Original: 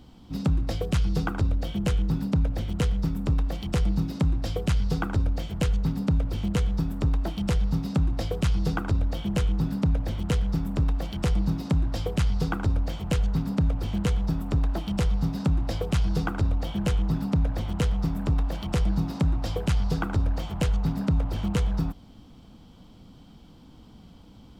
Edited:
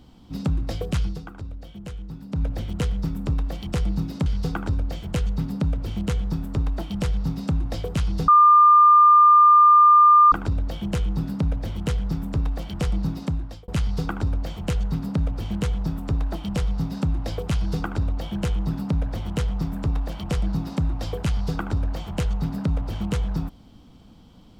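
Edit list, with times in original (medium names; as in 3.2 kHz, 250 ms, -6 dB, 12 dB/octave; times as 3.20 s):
1.04–2.43 s: dip -11 dB, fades 0.15 s
4.26–4.73 s: delete
8.75 s: add tone 1.2 kHz -9.5 dBFS 2.04 s
11.45–12.11 s: fade out equal-power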